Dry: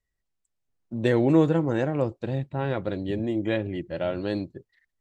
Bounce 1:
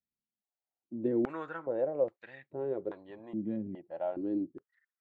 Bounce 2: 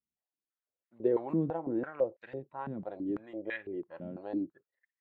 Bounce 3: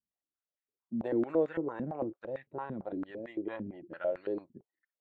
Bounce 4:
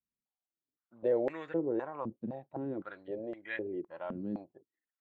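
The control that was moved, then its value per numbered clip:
step-sequenced band-pass, rate: 2.4 Hz, 6 Hz, 8.9 Hz, 3.9 Hz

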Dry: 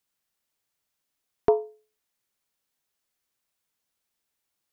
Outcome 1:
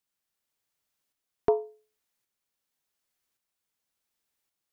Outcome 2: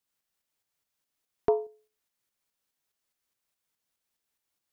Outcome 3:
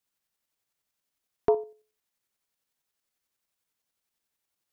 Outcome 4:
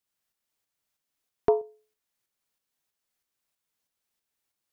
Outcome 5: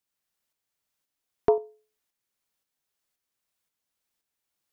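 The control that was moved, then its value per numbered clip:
tremolo, rate: 0.89 Hz, 4.8 Hz, 11 Hz, 3.1 Hz, 1.9 Hz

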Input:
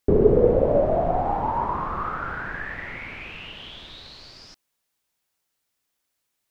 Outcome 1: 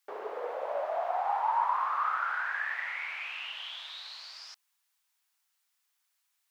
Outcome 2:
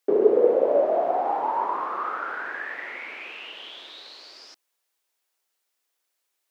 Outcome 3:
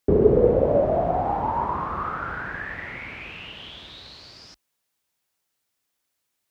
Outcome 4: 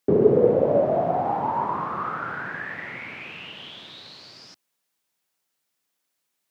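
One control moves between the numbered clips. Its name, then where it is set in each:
high-pass, cutoff frequency: 860 Hz, 340 Hz, 43 Hz, 120 Hz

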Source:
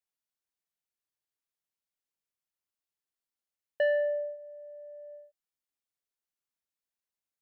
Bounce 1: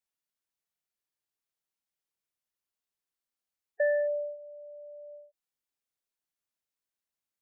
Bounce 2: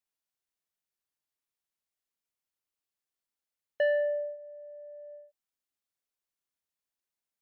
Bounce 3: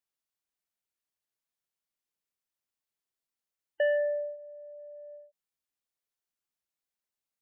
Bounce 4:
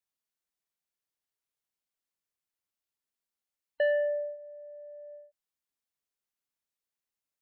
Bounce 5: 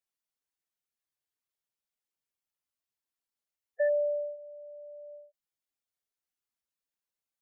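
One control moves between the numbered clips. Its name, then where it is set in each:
spectral gate, under each frame's peak: -20 dB, -60 dB, -35 dB, -45 dB, -10 dB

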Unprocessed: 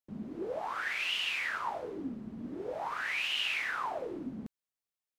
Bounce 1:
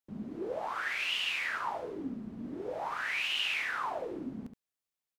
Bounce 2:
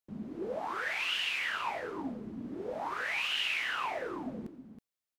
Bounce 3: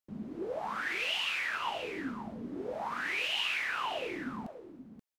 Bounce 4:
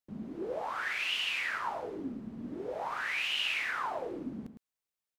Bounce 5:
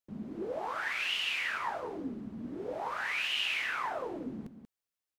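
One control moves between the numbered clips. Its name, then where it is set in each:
delay, time: 71 ms, 322 ms, 530 ms, 108 ms, 186 ms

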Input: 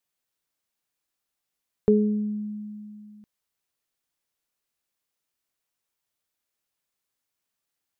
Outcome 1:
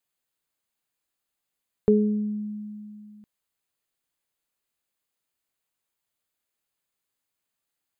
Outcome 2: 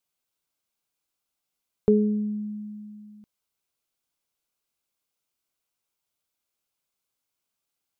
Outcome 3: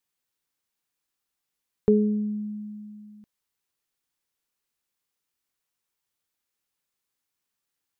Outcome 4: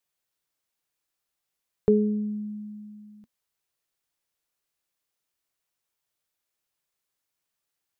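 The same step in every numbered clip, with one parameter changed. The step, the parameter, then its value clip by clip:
band-stop, frequency: 5.6 kHz, 1.8 kHz, 640 Hz, 240 Hz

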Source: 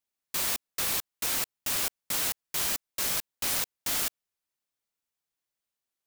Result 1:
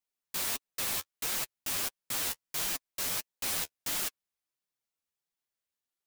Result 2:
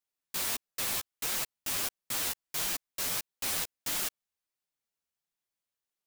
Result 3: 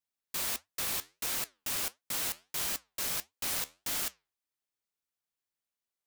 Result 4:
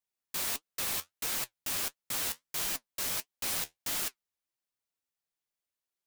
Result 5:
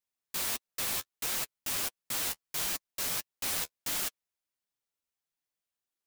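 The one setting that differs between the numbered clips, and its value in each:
flange, regen: +21%, 0%, -79%, +55%, -22%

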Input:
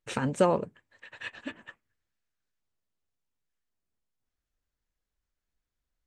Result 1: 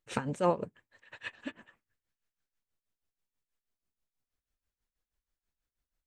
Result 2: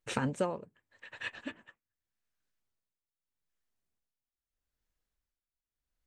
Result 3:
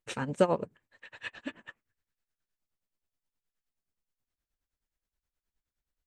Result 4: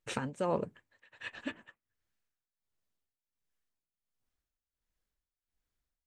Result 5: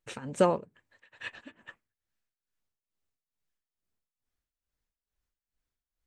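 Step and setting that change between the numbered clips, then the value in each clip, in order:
tremolo, rate: 6.2 Hz, 0.81 Hz, 9.5 Hz, 1.4 Hz, 2.3 Hz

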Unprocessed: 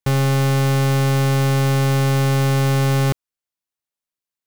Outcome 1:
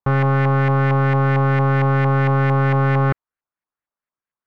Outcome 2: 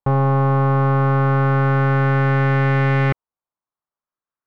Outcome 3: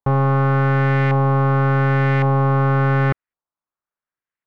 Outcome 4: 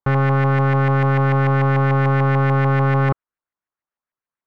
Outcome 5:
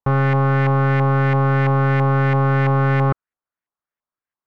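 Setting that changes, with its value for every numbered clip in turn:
LFO low-pass, rate: 4.4 Hz, 0.32 Hz, 0.9 Hz, 6.8 Hz, 3 Hz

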